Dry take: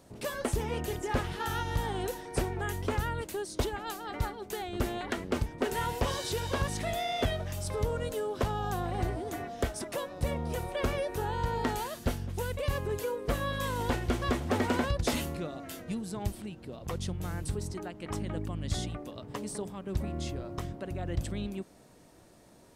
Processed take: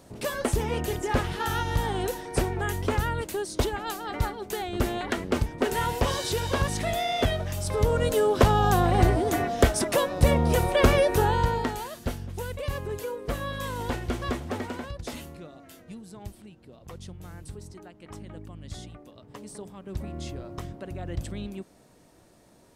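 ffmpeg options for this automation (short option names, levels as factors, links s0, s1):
-af "volume=8.41,afade=t=in:st=7.66:d=0.61:silence=0.473151,afade=t=out:st=11.17:d=0.54:silence=0.266073,afade=t=out:st=14.3:d=0.45:silence=0.446684,afade=t=in:st=19.18:d=1.18:silence=0.446684"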